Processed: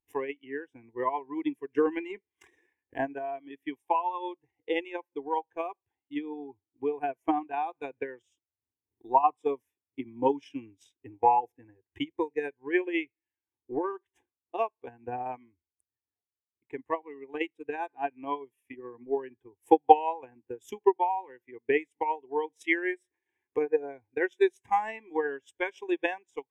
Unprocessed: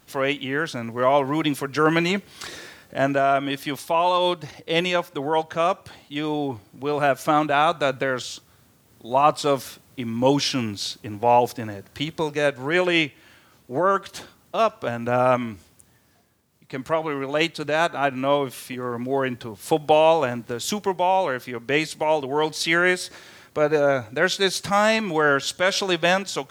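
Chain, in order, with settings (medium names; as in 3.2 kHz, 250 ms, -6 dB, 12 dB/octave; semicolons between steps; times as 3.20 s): transient shaper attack +12 dB, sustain -7 dB; static phaser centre 890 Hz, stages 8; spectral contrast expander 1.5:1; trim -7 dB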